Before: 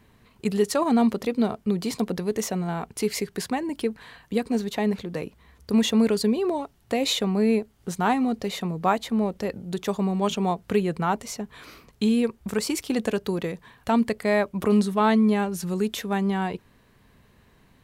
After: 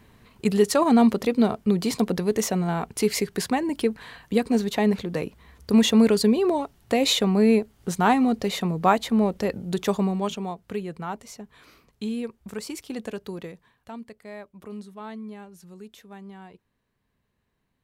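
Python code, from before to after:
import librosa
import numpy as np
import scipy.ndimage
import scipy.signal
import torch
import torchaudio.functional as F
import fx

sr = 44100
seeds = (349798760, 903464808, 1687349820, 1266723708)

y = fx.gain(x, sr, db=fx.line((9.95, 3.0), (10.51, -8.0), (13.44, -8.0), (13.98, -18.0)))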